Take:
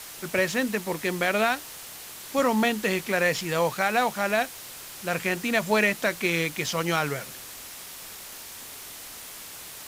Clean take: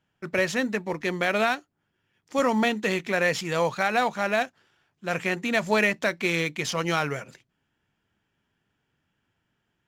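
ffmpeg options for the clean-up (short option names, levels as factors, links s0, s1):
-af "adeclick=t=4,afwtdn=0.01"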